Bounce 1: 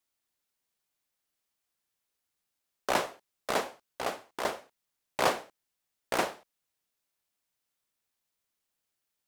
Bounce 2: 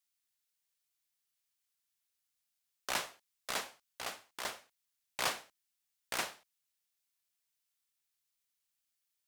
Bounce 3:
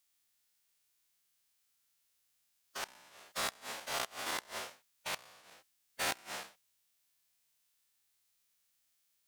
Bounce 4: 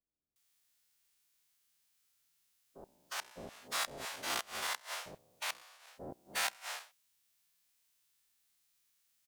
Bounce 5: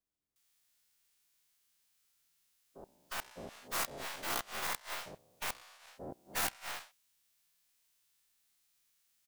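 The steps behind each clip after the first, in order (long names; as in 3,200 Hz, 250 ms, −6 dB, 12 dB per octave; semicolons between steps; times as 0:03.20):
guitar amp tone stack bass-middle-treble 5-5-5; level +5.5 dB
every bin's largest magnitude spread in time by 240 ms; gate with flip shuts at −19 dBFS, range −33 dB; harmonic and percussive parts rebalanced percussive −15 dB; level +6 dB
multiband delay without the direct sound lows, highs 360 ms, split 580 Hz; level +1 dB
stylus tracing distortion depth 0.49 ms; level +1 dB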